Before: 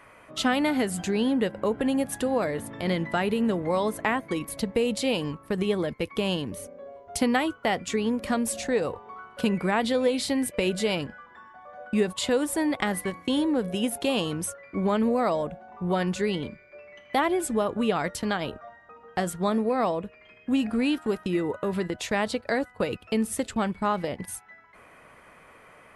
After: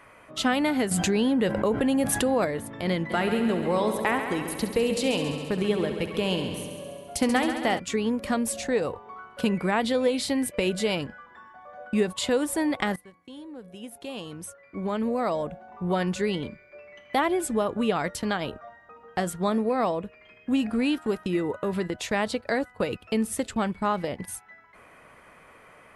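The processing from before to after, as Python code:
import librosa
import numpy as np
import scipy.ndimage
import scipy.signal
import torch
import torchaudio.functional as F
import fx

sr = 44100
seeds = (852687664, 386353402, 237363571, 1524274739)

y = fx.env_flatten(x, sr, amount_pct=70, at=(0.91, 2.45))
y = fx.echo_heads(y, sr, ms=68, heads='first and second', feedback_pct=68, wet_db=-11.5, at=(3.09, 7.78), fade=0.02)
y = fx.edit(y, sr, fx.fade_in_from(start_s=12.96, length_s=2.62, curve='qua', floor_db=-19.5), tone=tone)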